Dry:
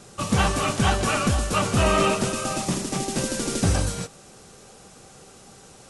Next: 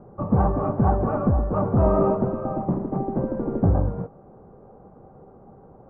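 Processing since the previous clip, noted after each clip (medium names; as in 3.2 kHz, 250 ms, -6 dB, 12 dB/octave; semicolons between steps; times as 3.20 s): inverse Chebyshev low-pass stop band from 4.2 kHz, stop band 70 dB; trim +2.5 dB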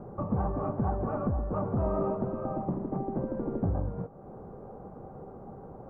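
compression 2:1, threshold -40 dBFS, peak gain reduction 13.5 dB; trim +3 dB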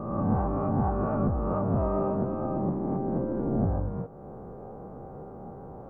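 reverse spectral sustain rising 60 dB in 1.16 s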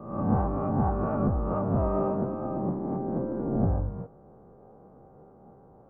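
three bands expanded up and down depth 70%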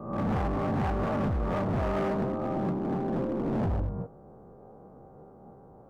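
overload inside the chain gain 27.5 dB; trim +2 dB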